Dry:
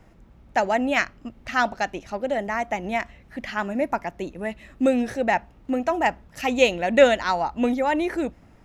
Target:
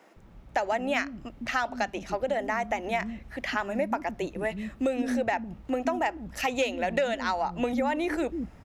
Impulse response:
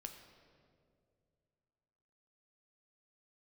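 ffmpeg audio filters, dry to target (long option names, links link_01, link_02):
-filter_complex "[0:a]asoftclip=type=tanh:threshold=-7dB,acrossover=split=270[link_01][link_02];[link_01]adelay=160[link_03];[link_03][link_02]amix=inputs=2:normalize=0,acompressor=threshold=-26dB:ratio=6,volume=2dB"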